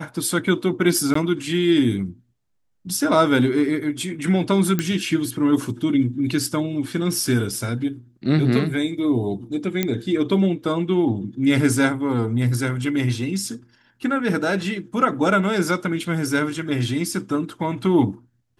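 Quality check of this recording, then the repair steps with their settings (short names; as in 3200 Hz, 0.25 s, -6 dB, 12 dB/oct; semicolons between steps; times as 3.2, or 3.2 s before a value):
1.14–1.15 gap 14 ms
4.79 pop -7 dBFS
9.83 pop -7 dBFS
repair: de-click; interpolate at 1.14, 14 ms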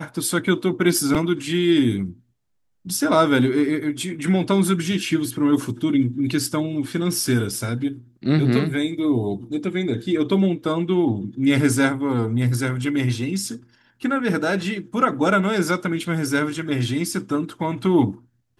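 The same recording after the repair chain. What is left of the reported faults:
none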